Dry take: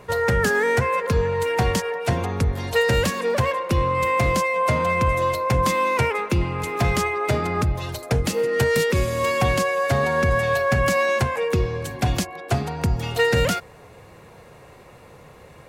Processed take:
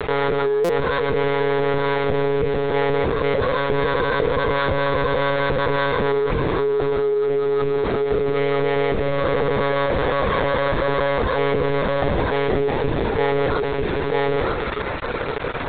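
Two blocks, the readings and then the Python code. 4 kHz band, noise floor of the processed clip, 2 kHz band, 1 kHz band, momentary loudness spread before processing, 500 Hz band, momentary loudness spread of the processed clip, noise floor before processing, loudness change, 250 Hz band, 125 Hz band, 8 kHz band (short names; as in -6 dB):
0.0 dB, -25 dBFS, -0.5 dB, +0.5 dB, 5 LU, +4.0 dB, 2 LU, -47 dBFS, +1.0 dB, +2.0 dB, -3.5 dB, under -20 dB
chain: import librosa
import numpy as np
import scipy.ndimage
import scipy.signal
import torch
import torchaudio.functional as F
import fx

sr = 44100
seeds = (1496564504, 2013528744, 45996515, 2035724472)

y = fx.sample_hold(x, sr, seeds[0], rate_hz=2600.0, jitter_pct=20)
y = fx.hum_notches(y, sr, base_hz=50, count=6)
y = 10.0 ** (-18.5 / 20.0) * np.tanh(y / 10.0 ** (-18.5 / 20.0))
y = scipy.signal.sosfilt(scipy.signal.butter(4, 91.0, 'highpass', fs=sr, output='sos'), y)
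y = fx.peak_eq(y, sr, hz=430.0, db=15.0, octaves=0.28)
y = y + 10.0 ** (-7.0 / 20.0) * np.pad(y, (int(948 * sr / 1000.0), 0))[:len(y)]
y = fx.quant_dither(y, sr, seeds[1], bits=6, dither='none')
y = fx.lpc_monotone(y, sr, seeds[2], pitch_hz=140.0, order=16)
y = fx.peak_eq(y, sr, hz=3000.0, db=-7.0, octaves=0.28)
y = fx.rider(y, sr, range_db=4, speed_s=0.5)
y = fx.buffer_glitch(y, sr, at_s=(0.64,), block=256, repeats=8)
y = fx.env_flatten(y, sr, amount_pct=70)
y = y * 10.0 ** (-3.5 / 20.0)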